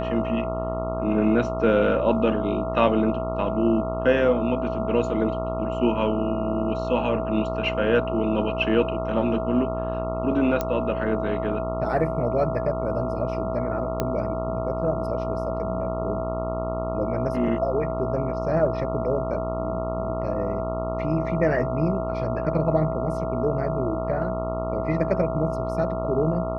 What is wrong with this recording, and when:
mains buzz 60 Hz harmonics 23 −30 dBFS
whistle 650 Hz −28 dBFS
0:10.61: click −11 dBFS
0:14.00: click −10 dBFS

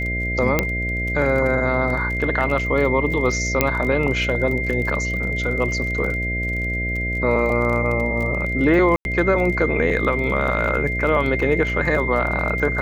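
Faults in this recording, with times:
mains buzz 60 Hz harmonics 11 −26 dBFS
surface crackle 30 per second −27 dBFS
whistle 2,100 Hz −24 dBFS
0:00.59: click −3 dBFS
0:03.61: click −1 dBFS
0:08.96–0:09.05: drop-out 91 ms

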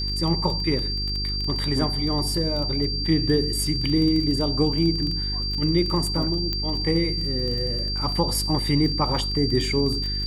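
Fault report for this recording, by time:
surface crackle 16 per second −27 dBFS
mains hum 50 Hz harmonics 8 −29 dBFS
whistle 4,700 Hz −27 dBFS
0:06.53: click −12 dBFS

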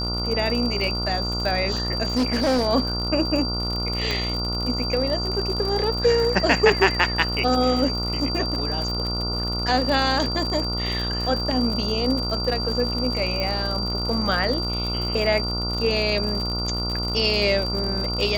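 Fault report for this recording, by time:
mains buzz 60 Hz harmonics 24 −28 dBFS
surface crackle 79 per second −27 dBFS
whistle 4,700 Hz −27 dBFS
0:02.16–0:02.68: clipping −17 dBFS
0:04.11: click −11 dBFS
0:13.40: click −15 dBFS

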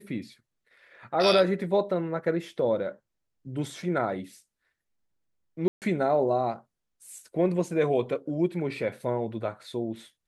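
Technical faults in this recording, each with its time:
0:05.68–0:05.82: drop-out 138 ms

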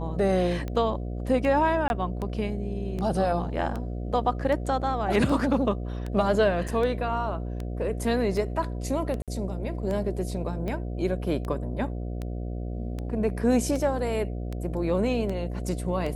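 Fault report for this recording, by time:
mains buzz 60 Hz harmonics 12 −32 dBFS
scratch tick 78 rpm −21 dBFS
0:01.88–0:01.90: drop-out 21 ms
0:06.68: drop-out 4.8 ms
0:09.22–0:09.28: drop-out 57 ms

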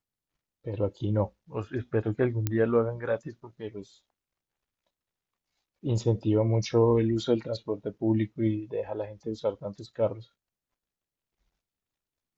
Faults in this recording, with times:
0:02.47: click −13 dBFS

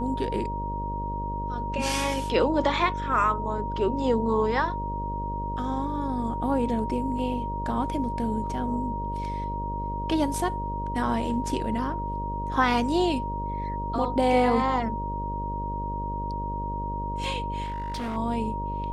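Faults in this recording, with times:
mains buzz 50 Hz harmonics 12 −33 dBFS
whistle 940 Hz −31 dBFS
0:17.63–0:18.17: clipping −28 dBFS

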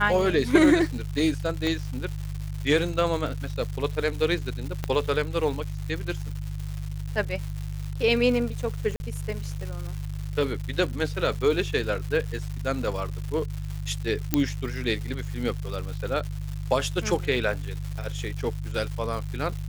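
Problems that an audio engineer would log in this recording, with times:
surface crackle 310 per second −33 dBFS
mains hum 50 Hz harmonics 3 −32 dBFS
0:01.67: click −15 dBFS
0:04.84: click −14 dBFS
0:08.96–0:09.00: drop-out 40 ms
0:14.34: click −6 dBFS

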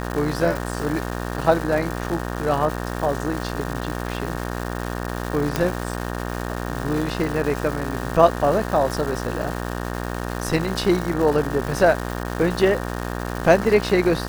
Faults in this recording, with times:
mains buzz 60 Hz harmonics 31 −28 dBFS
surface crackle 580 per second −27 dBFS
0:05.56: click −6 dBFS

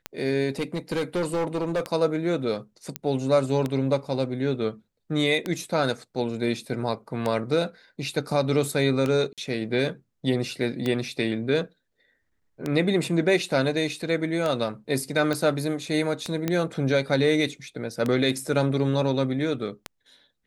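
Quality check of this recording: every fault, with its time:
scratch tick 33 1/3 rpm −13 dBFS
0:00.59–0:01.81: clipping −21.5 dBFS
0:02.96: click −11 dBFS
0:09.33–0:09.38: drop-out 47 ms
0:15.33: click −13 dBFS
0:16.48: click −11 dBFS

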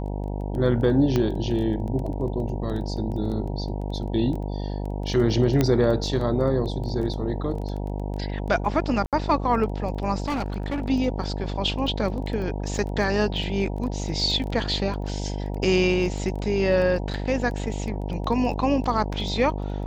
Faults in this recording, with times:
mains buzz 50 Hz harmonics 19 −29 dBFS
surface crackle 10 per second −31 dBFS
0:01.16: click −11 dBFS
0:05.61: click −8 dBFS
0:09.06–0:09.13: drop-out 67 ms
0:10.26–0:10.88: clipping −23 dBFS

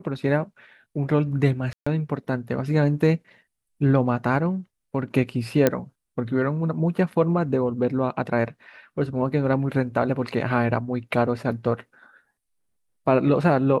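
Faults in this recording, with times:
0:01.73–0:01.86: drop-out 135 ms
0:05.67: click −5 dBFS

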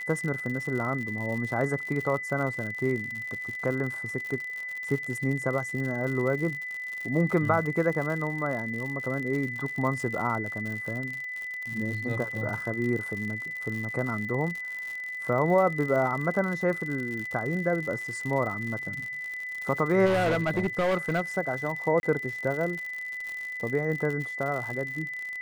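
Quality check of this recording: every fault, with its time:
surface crackle 93 per second −33 dBFS
whistle 2,000 Hz −33 dBFS
0:20.05–0:21.21: clipping −21.5 dBFS
0:22.00–0:22.03: drop-out 31 ms

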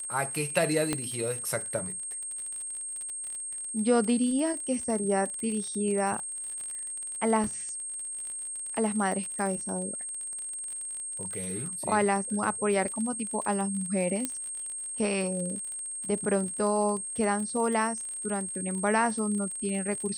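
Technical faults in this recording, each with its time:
surface crackle 49 per second −34 dBFS
whistle 8,500 Hz −34 dBFS
0:00.93: click −13 dBFS
0:07.44: drop-out 2.7 ms
0:14.25: click −14 dBFS

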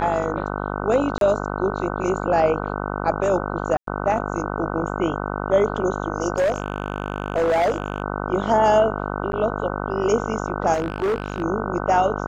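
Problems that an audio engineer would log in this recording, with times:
mains buzz 50 Hz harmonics 30 −27 dBFS
0:01.18–0:01.21: drop-out 32 ms
0:03.77–0:03.87: drop-out 103 ms
0:06.36–0:08.02: clipping −16 dBFS
0:09.32–0:09.33: drop-out 11 ms
0:10.73–0:11.42: clipping −18.5 dBFS

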